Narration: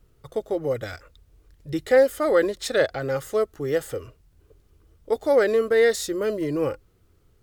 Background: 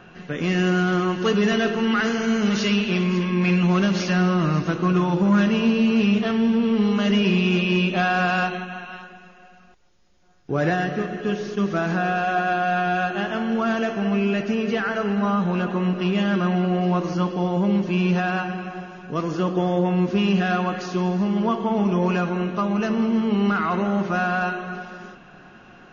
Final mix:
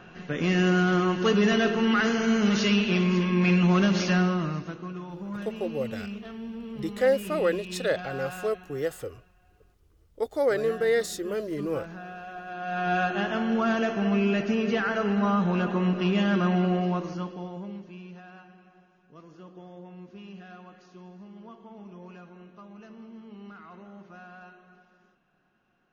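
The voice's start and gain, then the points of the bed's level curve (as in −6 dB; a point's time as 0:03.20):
5.10 s, −5.5 dB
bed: 0:04.14 −2 dB
0:04.94 −18 dB
0:12.45 −18 dB
0:12.93 −2.5 dB
0:16.68 −2.5 dB
0:18.11 −24.5 dB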